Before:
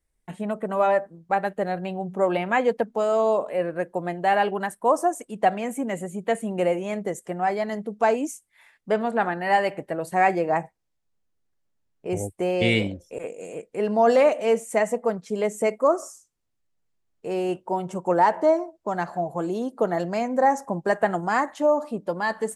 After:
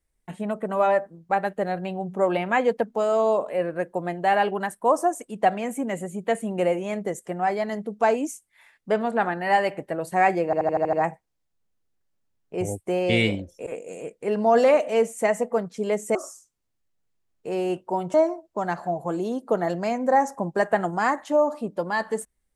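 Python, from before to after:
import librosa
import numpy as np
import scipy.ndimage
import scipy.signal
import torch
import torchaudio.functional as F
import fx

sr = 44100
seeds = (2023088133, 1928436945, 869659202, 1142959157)

y = fx.edit(x, sr, fx.stutter(start_s=10.45, slice_s=0.08, count=7),
    fx.cut(start_s=15.67, length_s=0.27),
    fx.cut(start_s=17.93, length_s=0.51), tone=tone)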